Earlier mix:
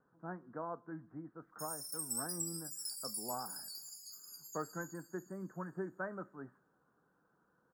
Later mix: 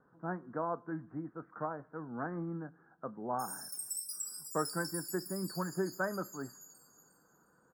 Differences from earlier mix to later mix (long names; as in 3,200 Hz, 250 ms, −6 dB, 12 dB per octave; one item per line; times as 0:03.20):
speech +6.5 dB
background: entry +1.80 s